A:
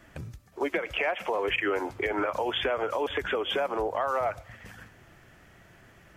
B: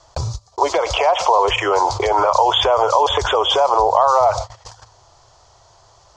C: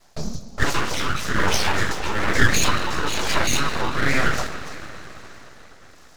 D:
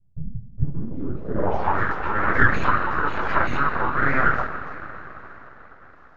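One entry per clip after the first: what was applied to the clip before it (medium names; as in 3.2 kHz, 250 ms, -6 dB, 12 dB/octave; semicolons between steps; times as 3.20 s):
gate -41 dBFS, range -44 dB; FFT filter 110 Hz 0 dB, 220 Hz -23 dB, 430 Hz -2 dB, 1 kHz +11 dB, 1.7 kHz -13 dB, 2.6 kHz -9 dB, 4.4 kHz +14 dB, 6.9 kHz +11 dB, 13 kHz -27 dB; level flattener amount 50%; trim +8.5 dB
rotary cabinet horn 1.1 Hz; two-slope reverb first 0.28 s, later 4.6 s, from -22 dB, DRR -5.5 dB; full-wave rectifier; trim -5 dB
low-pass sweep 120 Hz -> 1.4 kHz, 0.53–1.86 s; trim -2 dB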